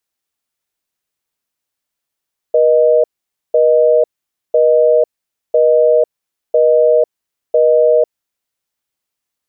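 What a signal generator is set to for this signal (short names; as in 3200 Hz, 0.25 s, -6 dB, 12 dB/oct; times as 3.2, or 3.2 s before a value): call progress tone busy tone, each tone -10 dBFS 5.98 s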